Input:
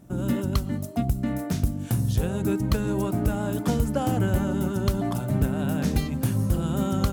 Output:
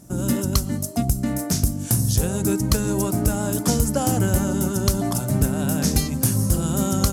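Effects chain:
flat-topped bell 7,700 Hz +12.5 dB
level +3 dB

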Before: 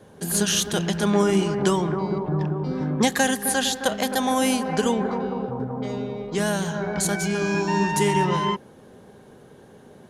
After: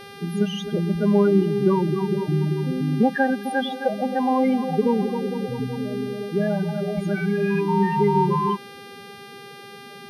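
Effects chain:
spectral peaks only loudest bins 8
hum with harmonics 400 Hz, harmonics 33, −42 dBFS −2 dB per octave
moving average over 6 samples
level +3 dB

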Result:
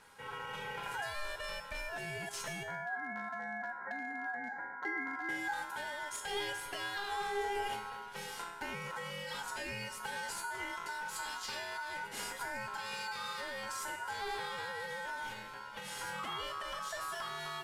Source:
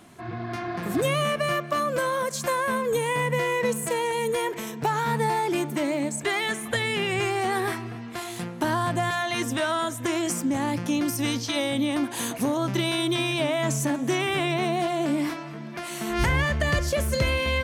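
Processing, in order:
variable-slope delta modulation 64 kbit/s
0:02.63–0:05.29: Butterworth low-pass 1,000 Hz 96 dB per octave
brickwall limiter −19 dBFS, peak gain reduction 5.5 dB
downward compressor 16 to 1, threshold −27 dBFS, peak gain reduction 6 dB
ring modulation 1,200 Hz
hard clipping −25 dBFS, distortion −27 dB
tuned comb filter 410 Hz, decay 0.68 s, mix 90%
level +11.5 dB

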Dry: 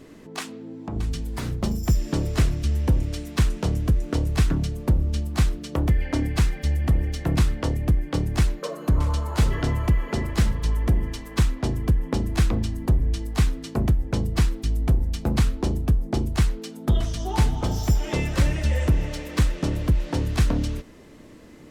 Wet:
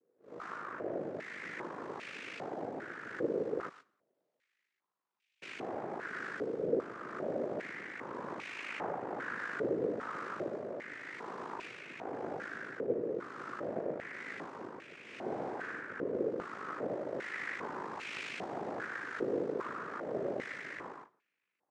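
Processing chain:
spectrum smeared in time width 405 ms
0:03.68–0:05.42: first difference
in parallel at −11 dB: sample-rate reduction 1,800 Hz, jitter 0%
on the sum: noise gate −39 dBFS, range −29 dB
downward compressor, threshold −25 dBFS, peak gain reduction 7 dB
ring modulation 26 Hz
coupled-rooms reverb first 0.64 s, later 3.1 s, from −27 dB, DRR 18 dB
cochlear-implant simulation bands 3
0:15.03–0:15.80: double-tracking delay 45 ms −2.5 dB
band-pass on a step sequencer 2.5 Hz 490–2,500 Hz
level +11 dB

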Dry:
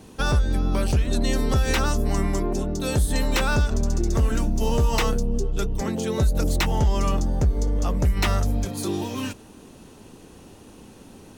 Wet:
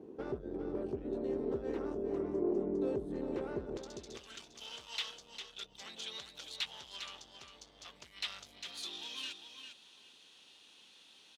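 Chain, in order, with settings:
downward compressor, threshold −21 dBFS, peak gain reduction 6.5 dB
sine wavefolder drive 7 dB, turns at −13.5 dBFS
resonant band-pass 380 Hz, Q 3.4, from 0:03.77 3,500 Hz
repeating echo 402 ms, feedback 15%, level −8.5 dB
level −8 dB

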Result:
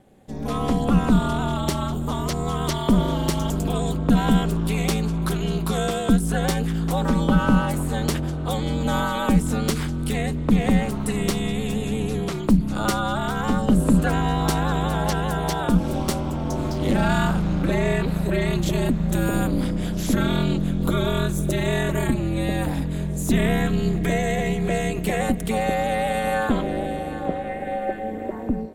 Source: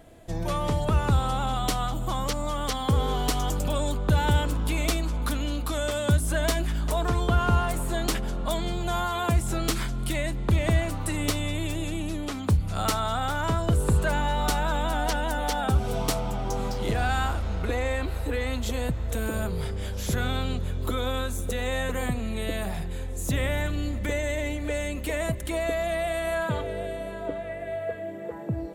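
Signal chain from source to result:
ring modulation 110 Hz
parametric band 240 Hz +6.5 dB 1.3 octaves
automatic gain control gain up to 11 dB
level −4 dB

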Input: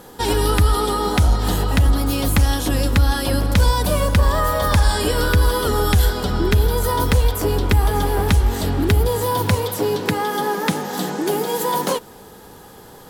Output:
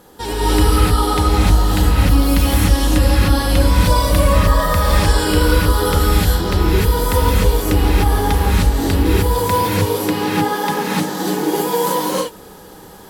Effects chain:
reverb whose tail is shaped and stops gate 330 ms rising, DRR −7 dB
level −5 dB

